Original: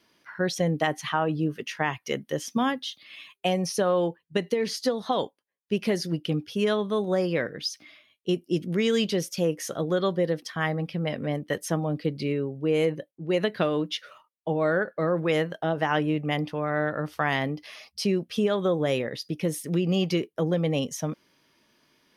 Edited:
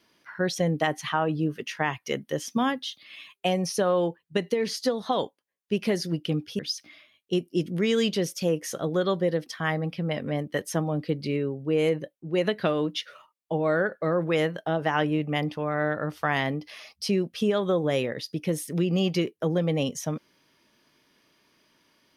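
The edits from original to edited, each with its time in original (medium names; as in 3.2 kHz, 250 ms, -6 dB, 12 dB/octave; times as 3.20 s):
6.59–7.55 s: delete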